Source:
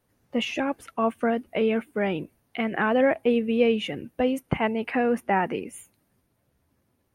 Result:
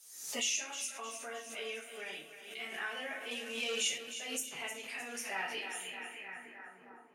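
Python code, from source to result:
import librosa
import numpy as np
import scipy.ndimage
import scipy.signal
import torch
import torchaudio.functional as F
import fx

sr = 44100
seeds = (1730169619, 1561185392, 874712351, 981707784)

p1 = fx.highpass(x, sr, hz=190.0, slope=6)
p2 = fx.high_shelf(p1, sr, hz=4500.0, db=12.0)
p3 = fx.room_shoebox(p2, sr, seeds[0], volume_m3=42.0, walls='mixed', distance_m=1.7)
p4 = fx.leveller(p3, sr, passes=1, at=(3.31, 3.98))
p5 = p4 + fx.echo_split(p4, sr, split_hz=400.0, low_ms=452, high_ms=309, feedback_pct=52, wet_db=-10.5, dry=0)
p6 = fx.filter_sweep_bandpass(p5, sr, from_hz=6900.0, to_hz=1200.0, start_s=5.09, end_s=6.98, q=2.6)
p7 = fx.pre_swell(p6, sr, db_per_s=63.0)
y = p7 * 10.0 ** (-2.0 / 20.0)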